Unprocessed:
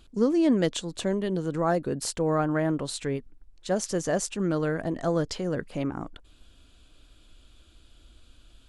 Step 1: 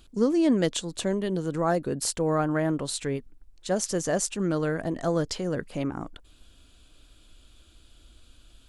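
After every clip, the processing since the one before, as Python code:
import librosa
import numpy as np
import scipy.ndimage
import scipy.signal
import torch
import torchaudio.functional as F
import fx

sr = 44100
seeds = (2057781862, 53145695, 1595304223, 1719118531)

y = fx.high_shelf(x, sr, hz=6400.0, db=6.0)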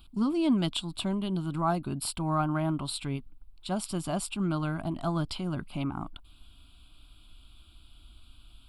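y = fx.fixed_phaser(x, sr, hz=1800.0, stages=6)
y = y * librosa.db_to_amplitude(1.5)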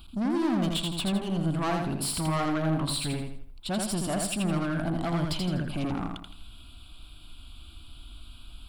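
y = 10.0 ** (-32.0 / 20.0) * np.tanh(x / 10.0 ** (-32.0 / 20.0))
y = fx.echo_feedback(y, sr, ms=82, feedback_pct=37, wet_db=-3.5)
y = y * librosa.db_to_amplitude(6.0)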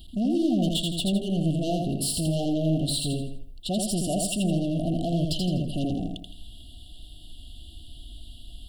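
y = fx.rattle_buzz(x, sr, strikes_db=-30.0, level_db=-35.0)
y = fx.brickwall_bandstop(y, sr, low_hz=760.0, high_hz=2700.0)
y = y * librosa.db_to_amplitude(3.0)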